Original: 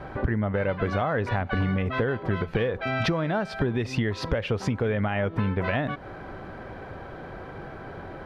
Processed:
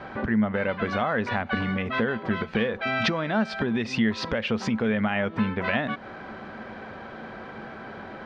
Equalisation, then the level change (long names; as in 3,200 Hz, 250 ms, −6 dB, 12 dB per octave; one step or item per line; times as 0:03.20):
high-frequency loss of the air 130 metres
spectral tilt +3 dB per octave
parametric band 220 Hz +14.5 dB 0.25 octaves
+2.0 dB